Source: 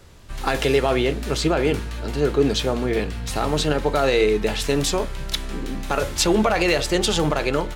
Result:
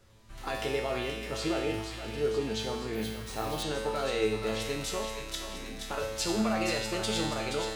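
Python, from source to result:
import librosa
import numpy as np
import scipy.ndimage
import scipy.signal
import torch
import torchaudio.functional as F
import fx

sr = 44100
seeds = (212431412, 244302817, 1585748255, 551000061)

y = fx.comb_fb(x, sr, f0_hz=110.0, decay_s=1.0, harmonics='all', damping=0.0, mix_pct=90)
y = fx.echo_thinned(y, sr, ms=475, feedback_pct=68, hz=1000.0, wet_db=-6.0)
y = fx.resample_bad(y, sr, factor=3, down='none', up='hold', at=(2.95, 3.63))
y = y * librosa.db_to_amplitude(2.5)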